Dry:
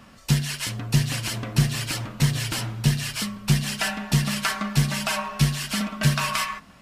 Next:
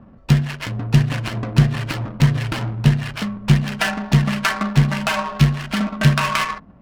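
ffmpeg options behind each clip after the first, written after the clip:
-af "adynamicsmooth=sensitivity=3:basefreq=560,volume=6.5dB"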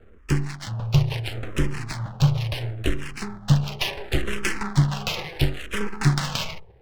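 -filter_complex "[0:a]acrossover=split=170|1900[a][b][c];[b]aeval=exprs='abs(val(0))':c=same[d];[a][d][c]amix=inputs=3:normalize=0,asplit=2[e][f];[f]afreqshift=-0.72[g];[e][g]amix=inputs=2:normalize=1"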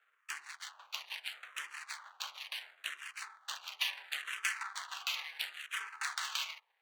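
-af "highpass=f=1.1k:w=0.5412,highpass=f=1.1k:w=1.3066,bandreject=f=5.2k:w=6.9,volume=-7dB"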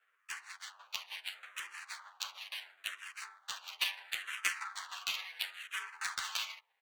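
-filter_complex "[0:a]asplit=2[a][b];[b]acrusher=bits=3:mix=0:aa=0.5,volume=-3.5dB[c];[a][c]amix=inputs=2:normalize=0,asplit=2[d][e];[e]adelay=10.1,afreqshift=0.38[f];[d][f]amix=inputs=2:normalize=1,volume=2dB"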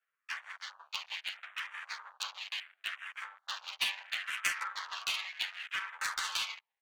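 -filter_complex "[0:a]afwtdn=0.00251,asplit=2[a][b];[b]aeval=exprs='0.0224*(abs(mod(val(0)/0.0224+3,4)-2)-1)':c=same,volume=-3.5dB[c];[a][c]amix=inputs=2:normalize=0"

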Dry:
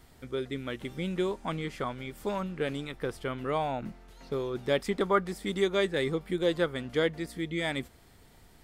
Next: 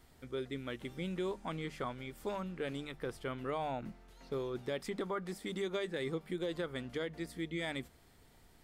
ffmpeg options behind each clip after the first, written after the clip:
-af "alimiter=limit=-22.5dB:level=0:latency=1:release=72,bandreject=f=50:t=h:w=6,bandreject=f=100:t=h:w=6,bandreject=f=150:t=h:w=6,bandreject=f=200:t=h:w=6,volume=-5.5dB"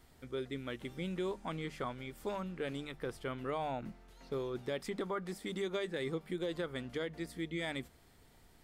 -af anull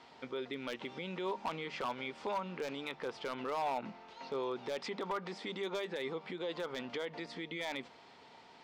-af "alimiter=level_in=13dB:limit=-24dB:level=0:latency=1:release=100,volume=-13dB,highpass=290,equalizer=f=330:t=q:w=4:g=-5,equalizer=f=920:t=q:w=4:g=8,equalizer=f=1.7k:t=q:w=4:g=-3,equalizer=f=2.6k:t=q:w=4:g=3,lowpass=f=5.2k:w=0.5412,lowpass=f=5.2k:w=1.3066,aeval=exprs='0.0133*(abs(mod(val(0)/0.0133+3,4)-2)-1)':c=same,volume=9dB"

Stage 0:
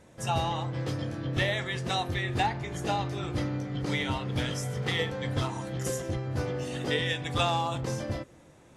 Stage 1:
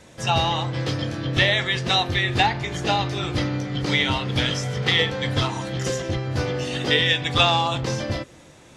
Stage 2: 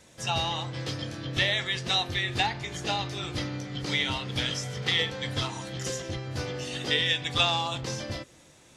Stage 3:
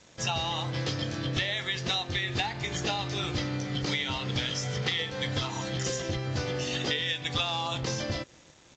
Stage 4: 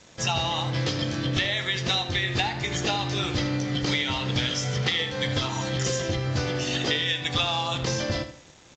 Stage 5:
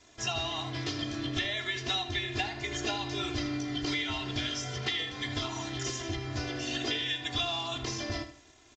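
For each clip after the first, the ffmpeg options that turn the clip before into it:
-filter_complex "[0:a]equalizer=f=4.2k:w=0.54:g=8,acrossover=split=370|5700[a][b][c];[c]acompressor=threshold=-54dB:ratio=5[d];[a][b][d]amix=inputs=3:normalize=0,volume=6dB"
-af "highshelf=f=3.3k:g=8,volume=-9dB"
-af "acompressor=threshold=-32dB:ratio=6,aresample=16000,aeval=exprs='sgn(val(0))*max(abs(val(0))-0.00112,0)':c=same,aresample=44100,volume=5.5dB"
-filter_complex "[0:a]asplit=2[a][b];[b]adelay=78,lowpass=f=4.7k:p=1,volume=-10.5dB,asplit=2[c][d];[d]adelay=78,lowpass=f=4.7k:p=1,volume=0.31,asplit=2[e][f];[f]adelay=78,lowpass=f=4.7k:p=1,volume=0.31[g];[a][c][e][g]amix=inputs=4:normalize=0,volume=4dB"
-af "aecho=1:1:2.9:0.92,volume=-9dB"

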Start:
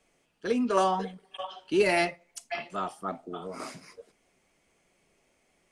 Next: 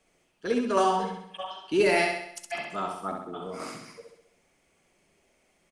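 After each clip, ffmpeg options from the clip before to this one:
-af "aecho=1:1:66|132|198|264|330|396|462:0.596|0.31|0.161|0.0838|0.0436|0.0226|0.0118"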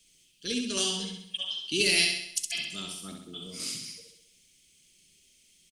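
-af "firequalizer=gain_entry='entry(140,0);entry(800,-24);entry(3100,12)':delay=0.05:min_phase=1"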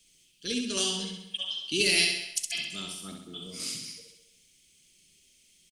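-filter_complex "[0:a]asplit=2[a][b];[b]adelay=220,highpass=300,lowpass=3.4k,asoftclip=type=hard:threshold=-18.5dB,volume=-16dB[c];[a][c]amix=inputs=2:normalize=0"

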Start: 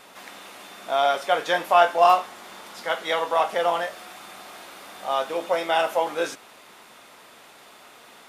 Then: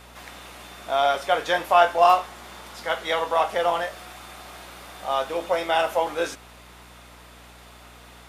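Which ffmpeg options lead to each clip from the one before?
-af "aeval=exprs='val(0)+0.00316*(sin(2*PI*60*n/s)+sin(2*PI*2*60*n/s)/2+sin(2*PI*3*60*n/s)/3+sin(2*PI*4*60*n/s)/4+sin(2*PI*5*60*n/s)/5)':c=same"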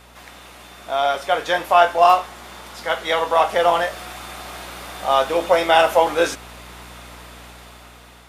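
-af "dynaudnorm=f=340:g=7:m=10dB"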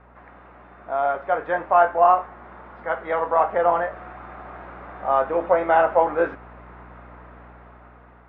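-af "lowpass=f=1.7k:w=0.5412,lowpass=f=1.7k:w=1.3066,volume=-2.5dB"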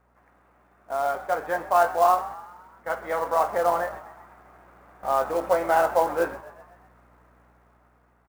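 -filter_complex "[0:a]acrusher=bits=5:mode=log:mix=0:aa=0.000001,agate=range=-10dB:threshold=-35dB:ratio=16:detection=peak,asplit=6[a][b][c][d][e][f];[b]adelay=127,afreqshift=49,volume=-17.5dB[g];[c]adelay=254,afreqshift=98,volume=-22.2dB[h];[d]adelay=381,afreqshift=147,volume=-27dB[i];[e]adelay=508,afreqshift=196,volume=-31.7dB[j];[f]adelay=635,afreqshift=245,volume=-36.4dB[k];[a][g][h][i][j][k]amix=inputs=6:normalize=0,volume=-3.5dB"

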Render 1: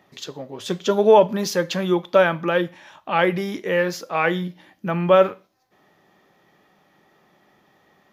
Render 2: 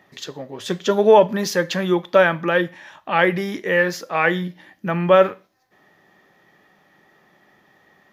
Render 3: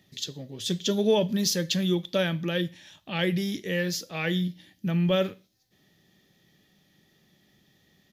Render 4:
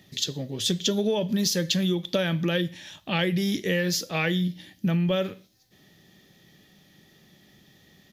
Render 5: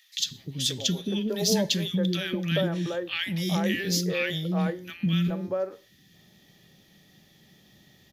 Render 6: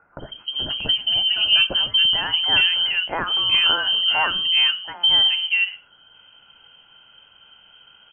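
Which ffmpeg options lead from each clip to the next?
-af "equalizer=f=1.8k:t=o:w=0.33:g=6.5,volume=1dB"
-af "firequalizer=gain_entry='entry(100,0);entry(360,-11);entry(990,-23);entry(3400,-1)':delay=0.05:min_phase=1,volume=2.5dB"
-af "acompressor=threshold=-28dB:ratio=12,volume=7dB"
-filter_complex "[0:a]acrossover=split=340|1400[a][b][c];[a]adelay=190[d];[b]adelay=420[e];[d][e][c]amix=inputs=3:normalize=0"
-af "lowpass=f=2.8k:t=q:w=0.5098,lowpass=f=2.8k:t=q:w=0.6013,lowpass=f=2.8k:t=q:w=0.9,lowpass=f=2.8k:t=q:w=2.563,afreqshift=-3300,volume=8dB"

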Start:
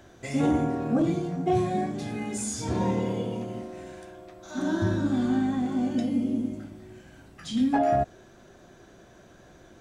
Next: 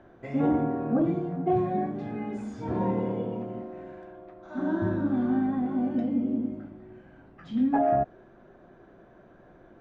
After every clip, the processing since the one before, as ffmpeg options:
-af "lowpass=1.5k,equalizer=f=77:t=o:w=1.2:g=-7.5"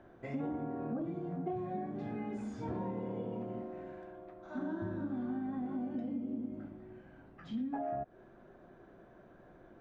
-af "acompressor=threshold=-31dB:ratio=6,volume=-4dB"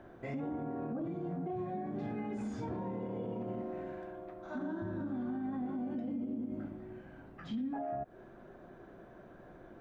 -af "alimiter=level_in=11dB:limit=-24dB:level=0:latency=1:release=67,volume=-11dB,volume=4dB"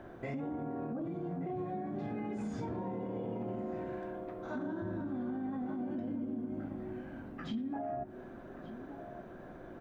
-filter_complex "[0:a]acompressor=threshold=-41dB:ratio=2.5,asplit=2[a][b];[b]adelay=1179,lowpass=f=1.6k:p=1,volume=-11dB,asplit=2[c][d];[d]adelay=1179,lowpass=f=1.6k:p=1,volume=0.47,asplit=2[e][f];[f]adelay=1179,lowpass=f=1.6k:p=1,volume=0.47,asplit=2[g][h];[h]adelay=1179,lowpass=f=1.6k:p=1,volume=0.47,asplit=2[i][j];[j]adelay=1179,lowpass=f=1.6k:p=1,volume=0.47[k];[a][c][e][g][i][k]amix=inputs=6:normalize=0,volume=4dB"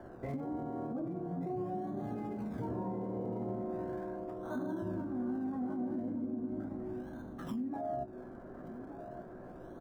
-filter_complex "[0:a]acrossover=split=140|1800[a][b][c];[c]acrusher=samples=34:mix=1:aa=0.000001:lfo=1:lforange=34:lforate=0.38[d];[a][b][d]amix=inputs=3:normalize=0,asplit=2[e][f];[f]adelay=16,volume=-10.5dB[g];[e][g]amix=inputs=2:normalize=0"

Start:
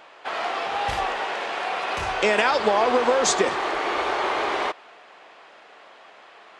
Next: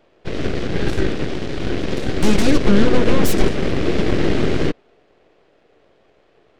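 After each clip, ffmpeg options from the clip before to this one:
-af "highpass=260,aeval=exprs='0.501*(cos(1*acos(clip(val(0)/0.501,-1,1)))-cos(1*PI/2))+0.224*(cos(3*acos(clip(val(0)/0.501,-1,1)))-cos(3*PI/2))+0.158*(cos(8*acos(clip(val(0)/0.501,-1,1)))-cos(8*PI/2))':c=same,lowshelf=f=620:t=q:w=1.5:g=13,volume=-4.5dB"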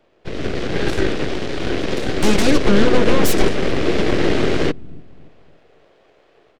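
-filter_complex "[0:a]acrossover=split=320[a][b];[a]aecho=1:1:283|566|849|1132:0.188|0.0735|0.0287|0.0112[c];[b]dynaudnorm=f=360:g=3:m=6dB[d];[c][d]amix=inputs=2:normalize=0,volume=-2.5dB"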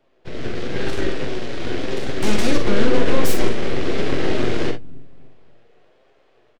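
-filter_complex "[0:a]flanger=delay=7.3:depth=1.4:regen=60:speed=0.98:shape=triangular,asplit=2[a][b];[b]aecho=0:1:43|61:0.447|0.237[c];[a][c]amix=inputs=2:normalize=0,volume=-1dB"

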